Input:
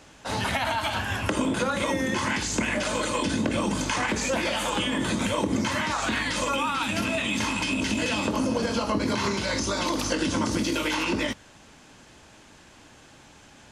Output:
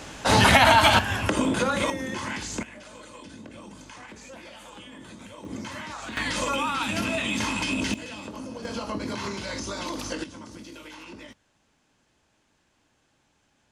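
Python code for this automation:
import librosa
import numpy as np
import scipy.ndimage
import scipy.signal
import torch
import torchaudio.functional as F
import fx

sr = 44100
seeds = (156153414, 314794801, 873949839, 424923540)

y = fx.gain(x, sr, db=fx.steps((0.0, 10.5), (0.99, 1.5), (1.9, -5.5), (2.63, -18.0), (5.45, -10.0), (6.17, -0.5), (7.94, -12.0), (8.65, -6.0), (10.24, -17.0)))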